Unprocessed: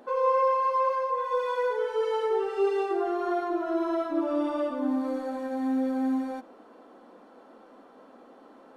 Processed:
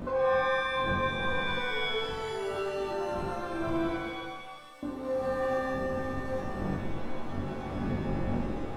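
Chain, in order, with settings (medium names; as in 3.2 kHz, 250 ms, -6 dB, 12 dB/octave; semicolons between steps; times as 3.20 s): wind noise 260 Hz -34 dBFS; compression 6:1, threshold -39 dBFS, peak gain reduction 20 dB; 3.96–4.83 s: differentiator; on a send: flutter echo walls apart 3.6 m, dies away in 0.32 s; on the sum: pitch-shifted reverb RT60 1.1 s, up +7 st, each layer -2 dB, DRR 3 dB; trim +5 dB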